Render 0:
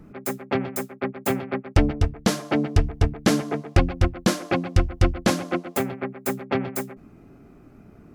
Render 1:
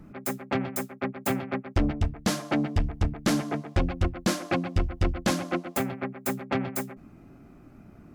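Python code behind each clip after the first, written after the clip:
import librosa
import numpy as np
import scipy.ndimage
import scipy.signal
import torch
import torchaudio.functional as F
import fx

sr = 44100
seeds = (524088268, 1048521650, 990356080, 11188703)

y = fx.peak_eq(x, sr, hz=430.0, db=-7.5, octaves=0.27)
y = 10.0 ** (-16.0 / 20.0) * np.tanh(y / 10.0 ** (-16.0 / 20.0))
y = F.gain(torch.from_numpy(y), -1.0).numpy()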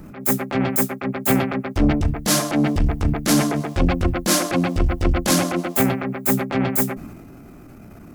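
y = fx.high_shelf(x, sr, hz=6700.0, db=12.0)
y = fx.transient(y, sr, attack_db=-10, sustain_db=6)
y = F.gain(torch.from_numpy(y), 8.5).numpy()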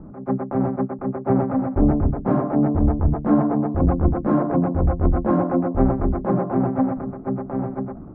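y = scipy.signal.sosfilt(scipy.signal.butter(4, 1100.0, 'lowpass', fs=sr, output='sos'), x)
y = y + 10.0 ** (-4.0 / 20.0) * np.pad(y, (int(986 * sr / 1000.0), 0))[:len(y)]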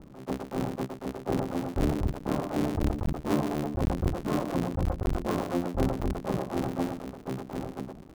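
y = fx.cycle_switch(x, sr, every=3, mode='muted')
y = F.gain(torch.from_numpy(y), -8.0).numpy()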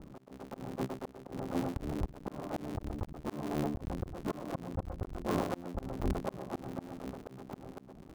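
y = fx.auto_swell(x, sr, attack_ms=321.0)
y = F.gain(torch.from_numpy(y), -1.5).numpy()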